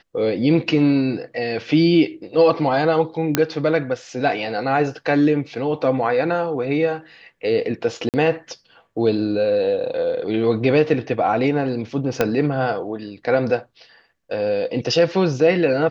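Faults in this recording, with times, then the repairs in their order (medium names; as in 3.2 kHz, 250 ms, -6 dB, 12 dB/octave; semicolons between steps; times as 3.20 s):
3.35 s: pop -1 dBFS
8.09–8.14 s: dropout 48 ms
12.21 s: pop -4 dBFS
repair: de-click; interpolate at 8.09 s, 48 ms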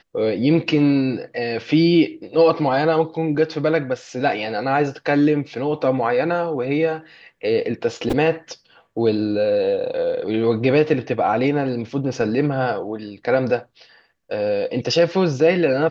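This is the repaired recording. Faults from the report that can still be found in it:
12.21 s: pop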